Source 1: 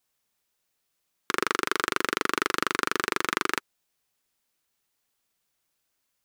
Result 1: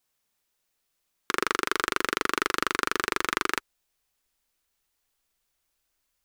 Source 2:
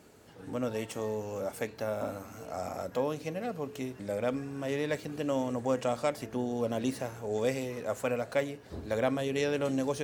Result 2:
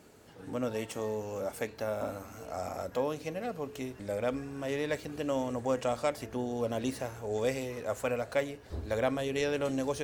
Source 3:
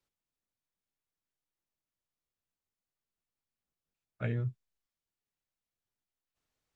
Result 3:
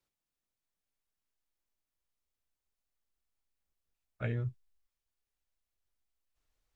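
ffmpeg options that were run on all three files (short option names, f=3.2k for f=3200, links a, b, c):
-af "asubboost=boost=6:cutoff=60"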